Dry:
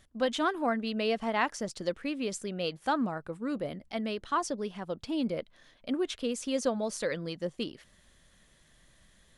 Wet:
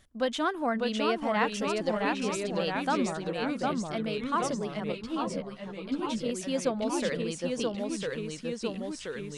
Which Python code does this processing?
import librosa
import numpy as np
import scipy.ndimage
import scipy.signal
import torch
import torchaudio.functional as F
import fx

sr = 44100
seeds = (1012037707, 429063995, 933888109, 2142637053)

y = fx.echo_pitch(x, sr, ms=585, semitones=-1, count=3, db_per_echo=-3.0)
y = fx.ensemble(y, sr, at=(4.92, 6.26))